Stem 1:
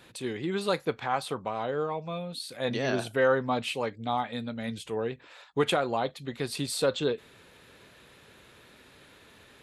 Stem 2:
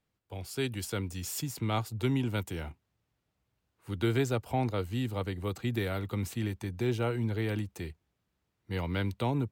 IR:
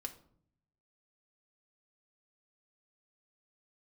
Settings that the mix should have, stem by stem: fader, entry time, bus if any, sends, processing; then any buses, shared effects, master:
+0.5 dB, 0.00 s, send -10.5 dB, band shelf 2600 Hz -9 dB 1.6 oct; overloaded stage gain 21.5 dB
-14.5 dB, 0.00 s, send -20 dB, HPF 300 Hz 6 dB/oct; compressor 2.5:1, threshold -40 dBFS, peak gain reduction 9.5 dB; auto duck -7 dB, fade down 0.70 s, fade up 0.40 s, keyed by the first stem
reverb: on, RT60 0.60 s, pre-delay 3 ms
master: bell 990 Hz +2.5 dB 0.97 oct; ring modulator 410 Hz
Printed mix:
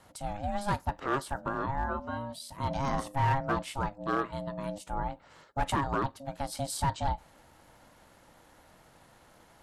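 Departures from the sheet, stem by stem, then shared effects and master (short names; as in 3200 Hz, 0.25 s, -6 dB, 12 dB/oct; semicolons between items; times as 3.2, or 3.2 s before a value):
stem 2 -14.5 dB -> -24.5 dB; reverb return -6.5 dB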